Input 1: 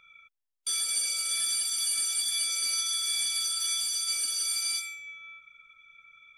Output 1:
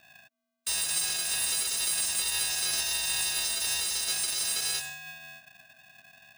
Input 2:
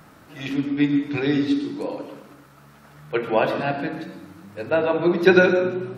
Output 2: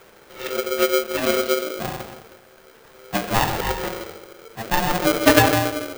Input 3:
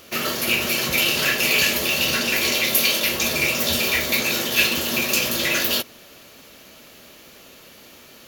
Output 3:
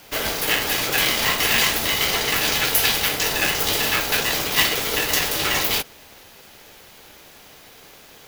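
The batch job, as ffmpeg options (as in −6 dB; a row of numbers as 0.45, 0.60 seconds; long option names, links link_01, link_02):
-af "afreqshift=-210,aeval=exprs='val(0)*sgn(sin(2*PI*450*n/s))':channel_layout=same"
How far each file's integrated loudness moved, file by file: 0.0, +0.5, 0.0 LU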